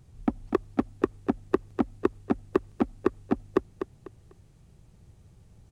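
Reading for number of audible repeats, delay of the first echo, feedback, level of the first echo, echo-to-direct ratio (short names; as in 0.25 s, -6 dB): 3, 0.248 s, 26%, -8.5 dB, -8.0 dB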